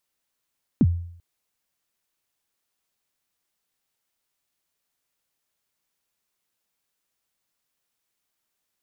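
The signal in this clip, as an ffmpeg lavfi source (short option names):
-f lavfi -i "aevalsrc='0.282*pow(10,-3*t/0.63)*sin(2*PI*(300*0.046/log(86/300)*(exp(log(86/300)*min(t,0.046)/0.046)-1)+86*max(t-0.046,0)))':d=0.39:s=44100"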